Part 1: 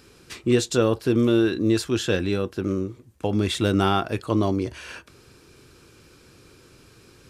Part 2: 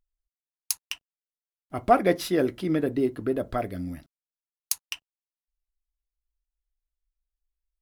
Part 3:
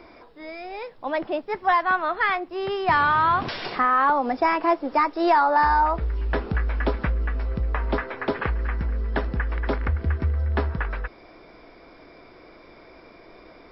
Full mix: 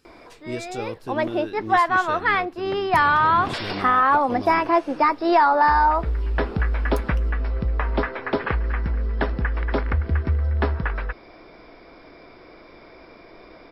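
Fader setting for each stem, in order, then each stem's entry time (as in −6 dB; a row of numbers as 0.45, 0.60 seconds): −12.0, −19.0, +2.0 decibels; 0.00, 2.25, 0.05 seconds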